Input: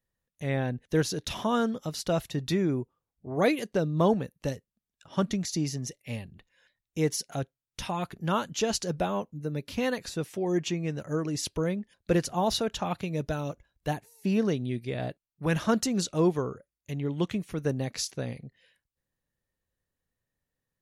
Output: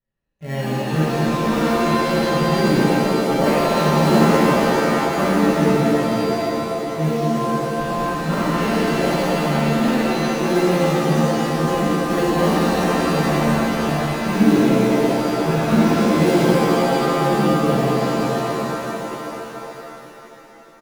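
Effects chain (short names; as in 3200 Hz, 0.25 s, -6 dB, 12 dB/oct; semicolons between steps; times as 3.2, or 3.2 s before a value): LPF 2600 Hz 12 dB/oct; comb 5.2 ms, depth 52%; in parallel at -5 dB: sample-and-hold 36×; on the sum: shimmer reverb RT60 3.6 s, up +7 st, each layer -2 dB, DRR -11 dB; gain -7 dB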